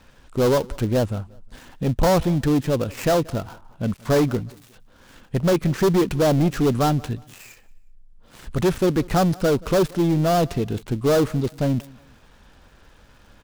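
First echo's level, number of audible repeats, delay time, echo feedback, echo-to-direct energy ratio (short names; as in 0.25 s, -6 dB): -23.5 dB, 2, 0.18 s, 33%, -23.0 dB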